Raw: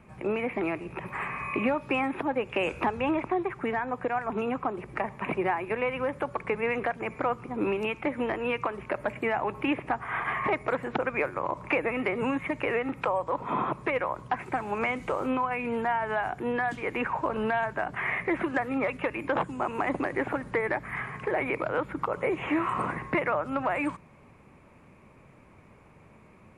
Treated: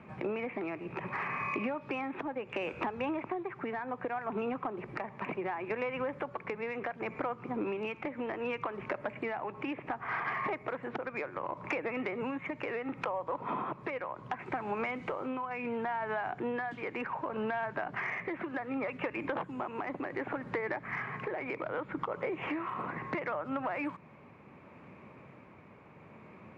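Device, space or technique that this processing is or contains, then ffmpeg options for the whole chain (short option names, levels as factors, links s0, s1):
AM radio: -af "highpass=120,lowpass=3500,acompressor=threshold=0.0178:ratio=5,asoftclip=type=tanh:threshold=0.0596,tremolo=f=0.68:d=0.28,volume=1.5"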